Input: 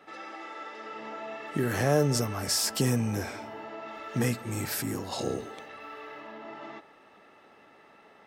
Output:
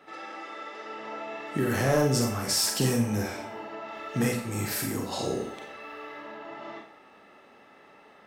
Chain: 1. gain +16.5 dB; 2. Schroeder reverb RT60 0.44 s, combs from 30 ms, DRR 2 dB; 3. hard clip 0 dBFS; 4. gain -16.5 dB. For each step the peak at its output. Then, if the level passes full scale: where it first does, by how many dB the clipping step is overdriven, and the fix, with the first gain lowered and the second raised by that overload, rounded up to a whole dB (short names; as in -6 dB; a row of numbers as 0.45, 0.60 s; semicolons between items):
+4.5, +7.0, 0.0, -16.5 dBFS; step 1, 7.0 dB; step 1 +9.5 dB, step 4 -9.5 dB